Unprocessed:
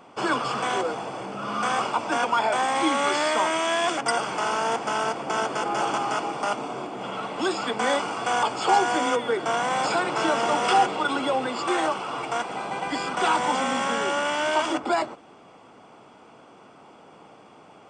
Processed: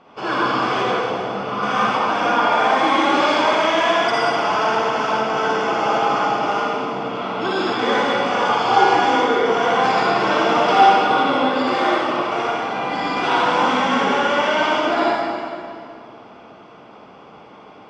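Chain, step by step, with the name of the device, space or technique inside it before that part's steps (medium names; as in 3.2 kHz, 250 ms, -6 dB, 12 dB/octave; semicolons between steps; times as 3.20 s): 2.99–3.39 s: band-stop 1.9 kHz, Q 5.8; low-pass 5.2 kHz 24 dB/octave; tunnel (flutter echo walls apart 10.1 m, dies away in 0.29 s; reverberation RT60 2.3 s, pre-delay 46 ms, DRR -7.5 dB); trim -1.5 dB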